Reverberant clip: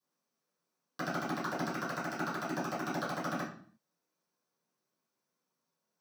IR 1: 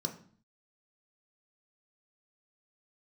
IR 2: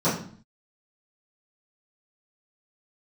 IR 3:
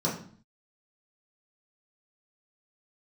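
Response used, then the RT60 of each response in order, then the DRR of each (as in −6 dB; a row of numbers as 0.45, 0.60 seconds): 2; 0.50, 0.50, 0.50 seconds; 3.5, −15.5, −6.5 decibels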